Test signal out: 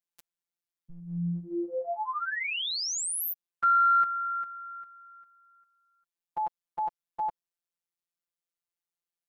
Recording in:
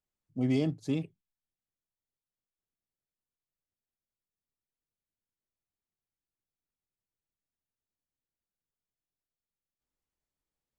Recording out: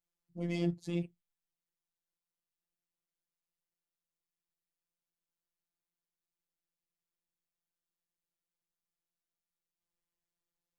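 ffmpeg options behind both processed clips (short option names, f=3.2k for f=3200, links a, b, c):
-af "acontrast=36,afftfilt=real='hypot(re,im)*cos(PI*b)':imag='0':win_size=1024:overlap=0.75,volume=-4.5dB"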